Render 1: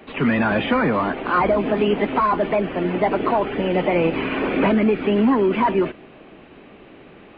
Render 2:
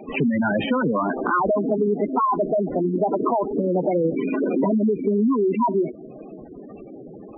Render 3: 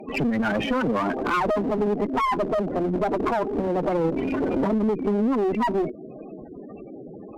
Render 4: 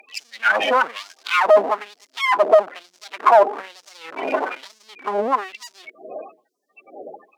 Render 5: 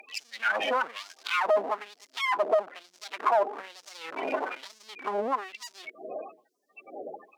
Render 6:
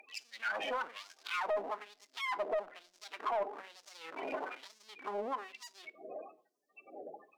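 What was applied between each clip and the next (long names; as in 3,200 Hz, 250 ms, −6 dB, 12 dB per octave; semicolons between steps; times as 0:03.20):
gate on every frequency bin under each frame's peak −10 dB strong; downward compressor 2.5 to 1, threshold −28 dBFS, peak gain reduction 9 dB; level +6.5 dB
asymmetric clip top −25.5 dBFS
auto-filter high-pass sine 1.1 Hz 620–5,900 Hz; level +7 dB
downward compressor 1.5 to 1, threshold −38 dBFS, peak gain reduction 11 dB; level −1 dB
soft clipping −19 dBFS, distortion −16 dB; convolution reverb RT60 0.45 s, pre-delay 6 ms, DRR 16 dB; level −8 dB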